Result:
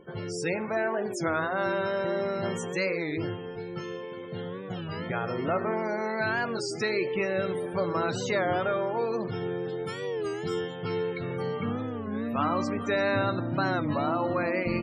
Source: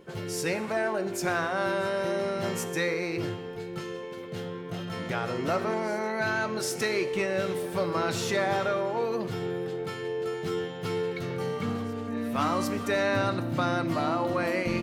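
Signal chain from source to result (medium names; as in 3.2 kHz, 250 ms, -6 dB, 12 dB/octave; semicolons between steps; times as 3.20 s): 9.65–10.76 s: treble shelf 6.7 kHz +10.5 dB; loudest bins only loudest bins 64; warped record 33 1/3 rpm, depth 160 cents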